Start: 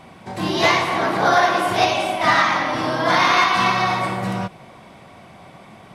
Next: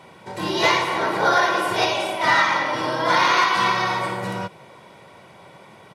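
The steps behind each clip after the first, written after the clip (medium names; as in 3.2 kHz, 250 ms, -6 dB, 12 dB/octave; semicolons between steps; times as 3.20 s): high-pass 130 Hz 12 dB/octave; comb 2.1 ms, depth 48%; trim -2 dB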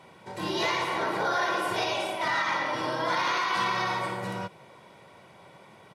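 peak limiter -12 dBFS, peak gain reduction 6 dB; trim -6 dB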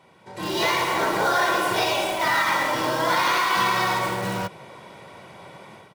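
level rider gain up to 12 dB; in parallel at -9 dB: integer overflow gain 18.5 dB; on the sum: trim -6 dB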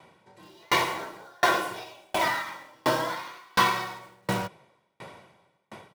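sawtooth tremolo in dB decaying 1.4 Hz, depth 40 dB; trim +3.5 dB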